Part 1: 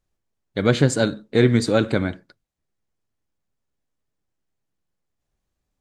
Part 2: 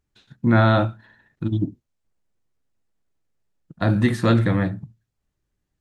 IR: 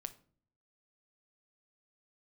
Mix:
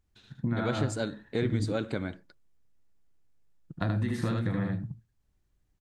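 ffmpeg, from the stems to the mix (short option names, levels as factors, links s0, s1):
-filter_complex "[0:a]volume=0.447[s0];[1:a]equalizer=f=580:w=7.4:g=-3,acompressor=threshold=0.1:ratio=6,lowshelf=f=110:g=8,volume=0.668,asplit=2[s1][s2];[s2]volume=0.708,aecho=0:1:76:1[s3];[s0][s1][s3]amix=inputs=3:normalize=0,acompressor=threshold=0.0316:ratio=2"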